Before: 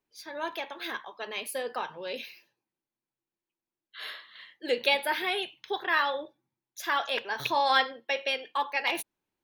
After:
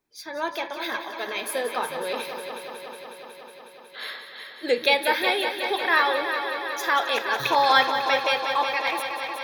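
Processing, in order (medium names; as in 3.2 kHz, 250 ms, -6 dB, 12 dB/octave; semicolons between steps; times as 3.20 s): fade out at the end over 0.91 s; band-stop 2.9 kHz, Q 6.6; multi-head delay 183 ms, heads first and second, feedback 74%, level -11 dB; trim +5.5 dB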